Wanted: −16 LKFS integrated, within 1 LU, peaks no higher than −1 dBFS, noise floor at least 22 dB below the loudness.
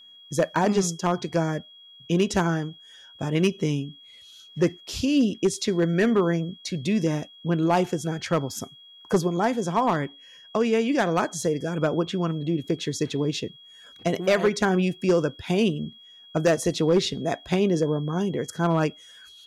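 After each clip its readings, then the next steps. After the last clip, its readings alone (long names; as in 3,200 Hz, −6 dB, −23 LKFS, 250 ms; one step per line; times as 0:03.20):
share of clipped samples 0.4%; peaks flattened at −13.5 dBFS; interfering tone 3,300 Hz; level of the tone −47 dBFS; integrated loudness −25.0 LKFS; sample peak −13.5 dBFS; target loudness −16.0 LKFS
→ clipped peaks rebuilt −13.5 dBFS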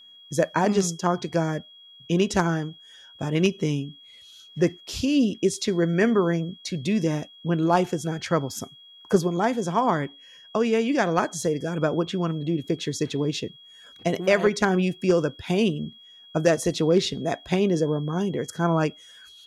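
share of clipped samples 0.0%; interfering tone 3,300 Hz; level of the tone −47 dBFS
→ notch filter 3,300 Hz, Q 30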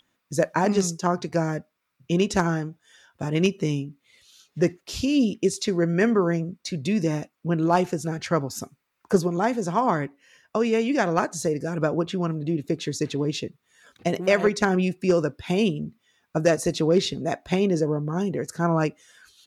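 interfering tone none found; integrated loudness −24.5 LKFS; sample peak −6.0 dBFS; target loudness −16.0 LKFS
→ level +8.5 dB
brickwall limiter −1 dBFS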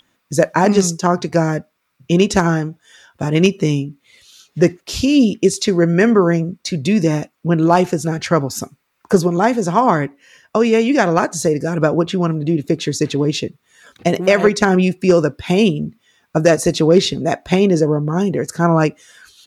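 integrated loudness −16.5 LKFS; sample peak −1.0 dBFS; background noise floor −68 dBFS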